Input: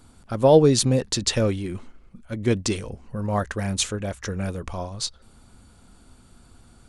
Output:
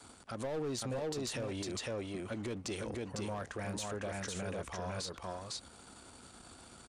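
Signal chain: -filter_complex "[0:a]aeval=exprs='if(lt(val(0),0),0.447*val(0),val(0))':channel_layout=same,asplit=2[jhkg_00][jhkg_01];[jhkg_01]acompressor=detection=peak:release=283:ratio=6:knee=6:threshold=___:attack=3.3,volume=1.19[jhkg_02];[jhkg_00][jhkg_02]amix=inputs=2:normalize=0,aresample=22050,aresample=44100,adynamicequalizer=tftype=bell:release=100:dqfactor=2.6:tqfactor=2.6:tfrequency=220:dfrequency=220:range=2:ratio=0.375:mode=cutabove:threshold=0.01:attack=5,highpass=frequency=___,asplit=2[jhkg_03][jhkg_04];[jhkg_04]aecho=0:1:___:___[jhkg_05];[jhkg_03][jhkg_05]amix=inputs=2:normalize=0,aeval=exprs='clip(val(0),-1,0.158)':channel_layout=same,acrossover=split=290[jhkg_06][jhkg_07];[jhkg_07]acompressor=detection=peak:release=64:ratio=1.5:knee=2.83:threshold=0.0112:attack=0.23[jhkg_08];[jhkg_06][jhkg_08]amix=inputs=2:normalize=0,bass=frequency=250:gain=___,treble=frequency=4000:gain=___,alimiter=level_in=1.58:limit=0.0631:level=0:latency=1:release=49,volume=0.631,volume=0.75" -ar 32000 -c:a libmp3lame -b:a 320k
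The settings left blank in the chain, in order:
0.0282, 52, 503, 0.631, -11, 1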